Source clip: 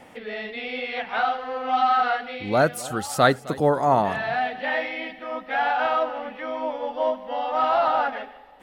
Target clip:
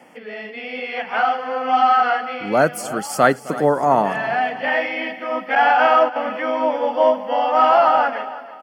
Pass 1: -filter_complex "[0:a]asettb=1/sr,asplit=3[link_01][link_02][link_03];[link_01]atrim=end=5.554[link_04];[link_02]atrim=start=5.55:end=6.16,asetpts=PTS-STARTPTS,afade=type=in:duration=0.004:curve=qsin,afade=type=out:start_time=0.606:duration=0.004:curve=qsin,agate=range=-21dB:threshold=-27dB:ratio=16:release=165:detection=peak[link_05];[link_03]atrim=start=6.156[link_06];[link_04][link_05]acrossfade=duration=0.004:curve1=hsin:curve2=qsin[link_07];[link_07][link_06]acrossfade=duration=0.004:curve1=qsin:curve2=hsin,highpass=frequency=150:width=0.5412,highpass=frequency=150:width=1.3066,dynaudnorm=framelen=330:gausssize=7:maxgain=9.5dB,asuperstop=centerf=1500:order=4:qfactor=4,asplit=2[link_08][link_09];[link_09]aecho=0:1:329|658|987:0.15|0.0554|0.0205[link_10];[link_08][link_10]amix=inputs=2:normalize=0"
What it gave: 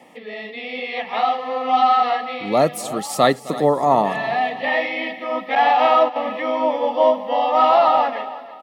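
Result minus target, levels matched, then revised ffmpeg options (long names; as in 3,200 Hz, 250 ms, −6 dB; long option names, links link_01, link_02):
2,000 Hz band −3.5 dB
-filter_complex "[0:a]asettb=1/sr,asplit=3[link_01][link_02][link_03];[link_01]atrim=end=5.554[link_04];[link_02]atrim=start=5.55:end=6.16,asetpts=PTS-STARTPTS,afade=type=in:duration=0.004:curve=qsin,afade=type=out:start_time=0.606:duration=0.004:curve=qsin,agate=range=-21dB:threshold=-27dB:ratio=16:release=165:detection=peak[link_05];[link_03]atrim=start=6.156[link_06];[link_04][link_05]acrossfade=duration=0.004:curve1=hsin:curve2=qsin[link_07];[link_07][link_06]acrossfade=duration=0.004:curve1=qsin:curve2=hsin,highpass=frequency=150:width=0.5412,highpass=frequency=150:width=1.3066,dynaudnorm=framelen=330:gausssize=7:maxgain=9.5dB,asuperstop=centerf=3800:order=4:qfactor=4,asplit=2[link_08][link_09];[link_09]aecho=0:1:329|658|987:0.15|0.0554|0.0205[link_10];[link_08][link_10]amix=inputs=2:normalize=0"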